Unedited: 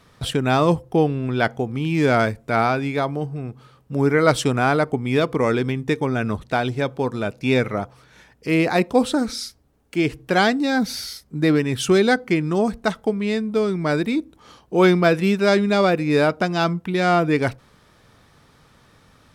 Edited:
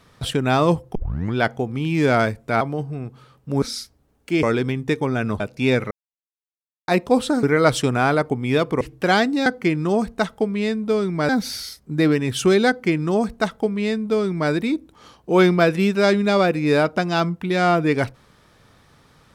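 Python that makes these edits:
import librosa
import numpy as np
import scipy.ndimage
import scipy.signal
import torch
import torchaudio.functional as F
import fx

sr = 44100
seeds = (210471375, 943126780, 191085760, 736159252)

y = fx.edit(x, sr, fx.tape_start(start_s=0.95, length_s=0.39),
    fx.cut(start_s=2.61, length_s=0.43),
    fx.swap(start_s=4.05, length_s=1.38, other_s=9.27, other_length_s=0.81),
    fx.cut(start_s=6.4, length_s=0.84),
    fx.silence(start_s=7.75, length_s=0.97),
    fx.duplicate(start_s=12.12, length_s=1.83, to_s=10.73), tone=tone)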